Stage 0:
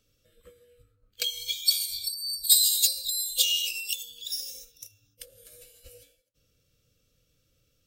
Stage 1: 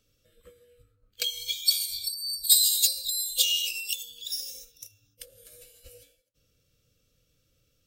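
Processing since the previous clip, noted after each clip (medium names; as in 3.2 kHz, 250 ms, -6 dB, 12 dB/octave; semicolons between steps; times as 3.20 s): no audible change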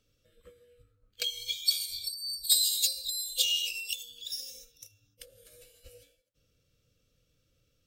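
treble shelf 7.3 kHz -7 dB; trim -1.5 dB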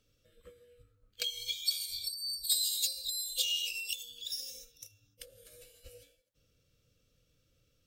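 compression 1.5:1, threshold -36 dBFS, peak gain reduction 6.5 dB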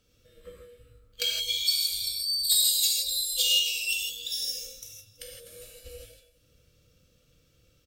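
feedback delay 329 ms, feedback 44%, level -24 dB; gated-style reverb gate 190 ms flat, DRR -3 dB; trim +4 dB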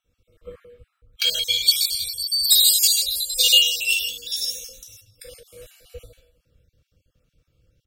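random holes in the spectrogram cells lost 29%; three bands expanded up and down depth 40%; trim +7.5 dB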